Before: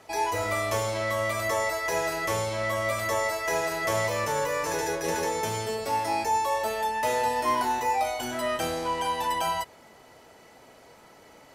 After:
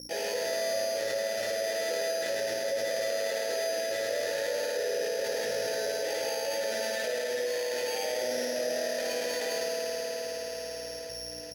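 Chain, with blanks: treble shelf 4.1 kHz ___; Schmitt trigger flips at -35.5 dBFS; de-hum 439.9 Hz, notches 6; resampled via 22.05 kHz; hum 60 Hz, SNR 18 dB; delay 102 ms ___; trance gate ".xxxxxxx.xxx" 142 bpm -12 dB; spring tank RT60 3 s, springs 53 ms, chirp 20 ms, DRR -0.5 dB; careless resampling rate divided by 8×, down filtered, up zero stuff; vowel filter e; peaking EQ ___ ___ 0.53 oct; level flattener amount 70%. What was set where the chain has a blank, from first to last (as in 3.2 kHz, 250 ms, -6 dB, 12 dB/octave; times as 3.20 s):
-10 dB, -4.5 dB, 2.5 kHz, -4 dB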